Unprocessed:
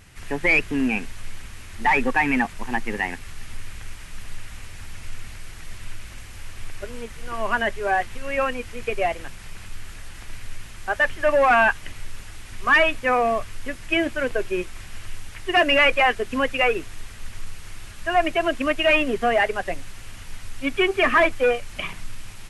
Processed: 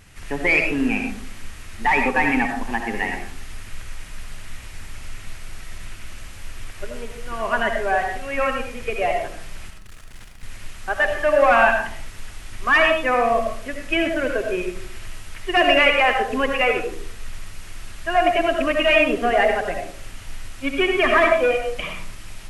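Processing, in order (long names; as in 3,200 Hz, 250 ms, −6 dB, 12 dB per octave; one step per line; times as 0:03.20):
0:09.70–0:10.43: hard clipping −39.5 dBFS, distortion −25 dB
on a send: convolution reverb RT60 0.55 s, pre-delay 40 ms, DRR 3 dB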